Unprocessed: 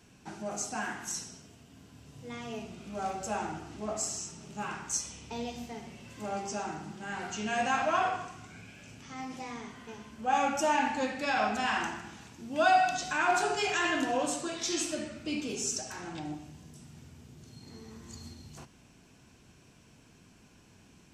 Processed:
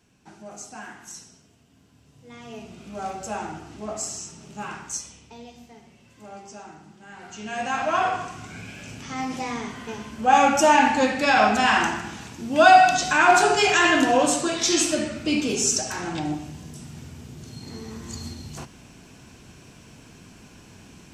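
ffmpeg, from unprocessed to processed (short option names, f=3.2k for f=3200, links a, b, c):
-af "volume=20dB,afade=t=in:st=2.25:d=0.55:silence=0.446684,afade=t=out:st=4.77:d=0.6:silence=0.354813,afade=t=in:st=7.17:d=0.53:silence=0.398107,afade=t=in:st=7.7:d=0.99:silence=0.354813"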